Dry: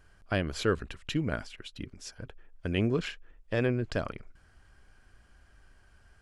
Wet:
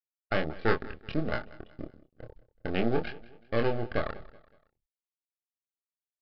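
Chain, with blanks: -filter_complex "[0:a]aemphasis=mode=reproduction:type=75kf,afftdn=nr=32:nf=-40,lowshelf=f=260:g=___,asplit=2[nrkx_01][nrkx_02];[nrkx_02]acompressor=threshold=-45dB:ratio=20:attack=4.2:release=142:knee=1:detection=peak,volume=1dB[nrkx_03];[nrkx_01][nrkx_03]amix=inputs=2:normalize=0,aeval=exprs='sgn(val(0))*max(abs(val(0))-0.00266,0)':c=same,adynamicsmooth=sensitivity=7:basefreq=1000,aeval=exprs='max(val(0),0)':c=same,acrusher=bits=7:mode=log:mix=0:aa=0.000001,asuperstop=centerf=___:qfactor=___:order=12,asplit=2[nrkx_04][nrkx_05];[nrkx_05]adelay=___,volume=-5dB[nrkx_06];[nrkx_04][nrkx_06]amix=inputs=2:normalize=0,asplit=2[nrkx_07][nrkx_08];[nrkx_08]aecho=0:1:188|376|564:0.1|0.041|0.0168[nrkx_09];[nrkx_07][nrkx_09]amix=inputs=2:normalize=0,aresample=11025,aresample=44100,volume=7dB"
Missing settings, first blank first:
-10, 980, 6.5, 26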